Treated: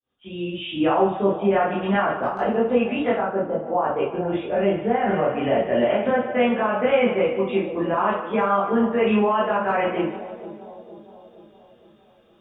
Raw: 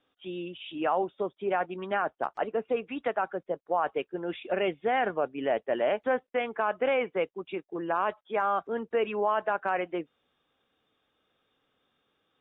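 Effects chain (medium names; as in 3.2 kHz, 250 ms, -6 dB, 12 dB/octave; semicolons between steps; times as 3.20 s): fade-in on the opening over 0.55 s; bass shelf 160 Hz +11 dB; two-band feedback delay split 740 Hz, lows 465 ms, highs 148 ms, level -15 dB; peak limiter -21 dBFS, peak gain reduction 6 dB; 3.17–5.07 s: treble shelf 2 kHz -11.5 dB; reverberation RT60 0.45 s, pre-delay 14 ms, DRR -6.5 dB; trim +3 dB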